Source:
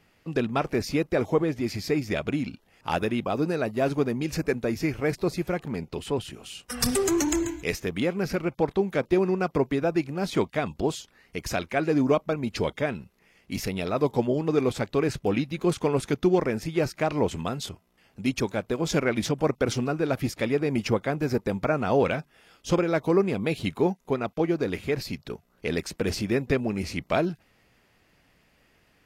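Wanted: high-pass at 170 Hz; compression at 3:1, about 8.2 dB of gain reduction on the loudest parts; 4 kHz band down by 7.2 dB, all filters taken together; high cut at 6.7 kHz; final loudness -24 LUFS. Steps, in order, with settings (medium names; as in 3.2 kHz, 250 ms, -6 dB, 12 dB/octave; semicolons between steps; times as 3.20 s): high-pass 170 Hz; low-pass 6.7 kHz; peaking EQ 4 kHz -9 dB; compression 3:1, threshold -29 dBFS; trim +9.5 dB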